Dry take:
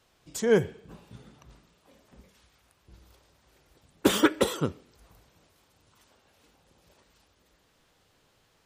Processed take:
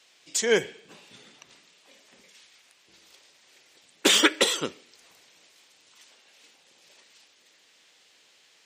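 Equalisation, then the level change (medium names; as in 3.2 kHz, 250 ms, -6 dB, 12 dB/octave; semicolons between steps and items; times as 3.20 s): high-pass 300 Hz 12 dB/octave; high-order bell 3.9 kHz +11 dB 2.5 oct; 0.0 dB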